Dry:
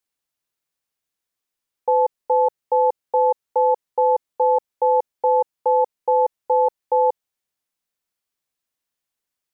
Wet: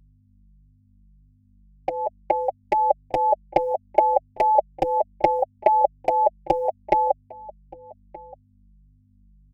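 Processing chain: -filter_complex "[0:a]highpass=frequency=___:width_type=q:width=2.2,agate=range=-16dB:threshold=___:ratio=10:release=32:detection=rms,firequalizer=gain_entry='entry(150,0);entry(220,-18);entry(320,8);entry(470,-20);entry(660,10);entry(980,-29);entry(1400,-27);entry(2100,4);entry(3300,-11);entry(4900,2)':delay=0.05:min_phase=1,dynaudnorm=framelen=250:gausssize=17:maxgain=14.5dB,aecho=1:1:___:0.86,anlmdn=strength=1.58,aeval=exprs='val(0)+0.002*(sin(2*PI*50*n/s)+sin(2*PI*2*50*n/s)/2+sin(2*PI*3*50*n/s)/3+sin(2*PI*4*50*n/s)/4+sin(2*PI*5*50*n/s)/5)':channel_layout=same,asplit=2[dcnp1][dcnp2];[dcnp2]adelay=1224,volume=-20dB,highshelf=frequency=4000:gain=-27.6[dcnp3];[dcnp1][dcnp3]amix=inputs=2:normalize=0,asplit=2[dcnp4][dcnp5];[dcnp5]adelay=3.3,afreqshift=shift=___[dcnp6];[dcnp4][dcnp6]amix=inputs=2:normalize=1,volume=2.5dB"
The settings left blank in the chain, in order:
650, -20dB, 5.1, -1.7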